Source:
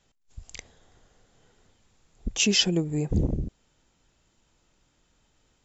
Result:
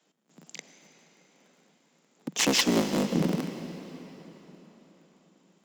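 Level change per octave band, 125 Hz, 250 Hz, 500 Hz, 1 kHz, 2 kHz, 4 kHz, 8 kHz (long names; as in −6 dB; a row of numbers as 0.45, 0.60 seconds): −5.5 dB, +1.5 dB, +2.0 dB, +13.0 dB, +1.0 dB, −3.0 dB, can't be measured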